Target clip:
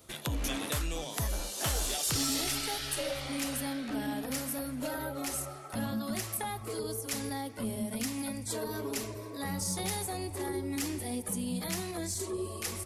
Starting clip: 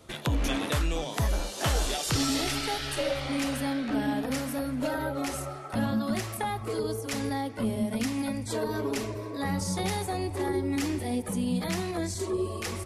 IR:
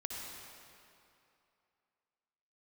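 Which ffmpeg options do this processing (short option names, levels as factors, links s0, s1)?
-af "aeval=exprs='0.158*(cos(1*acos(clip(val(0)/0.158,-1,1)))-cos(1*PI/2))+0.00398*(cos(5*acos(clip(val(0)/0.158,-1,1)))-cos(5*PI/2))':c=same,aemphasis=mode=production:type=50kf,volume=0.447"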